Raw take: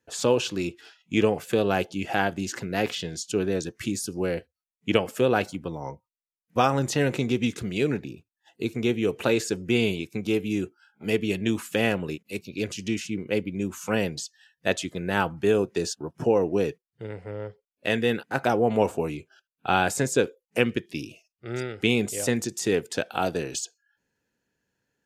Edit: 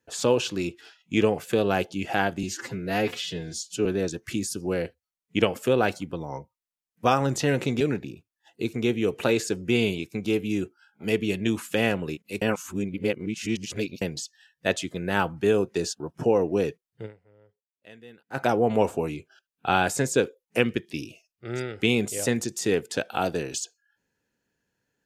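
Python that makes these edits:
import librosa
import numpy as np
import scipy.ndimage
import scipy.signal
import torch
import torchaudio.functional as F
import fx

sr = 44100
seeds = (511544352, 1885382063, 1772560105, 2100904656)

y = fx.edit(x, sr, fx.stretch_span(start_s=2.43, length_s=0.95, factor=1.5),
    fx.cut(start_s=7.33, length_s=0.48),
    fx.reverse_span(start_s=12.42, length_s=1.6),
    fx.fade_down_up(start_s=17.06, length_s=1.32, db=-23.5, fade_s=0.41, curve='exp'), tone=tone)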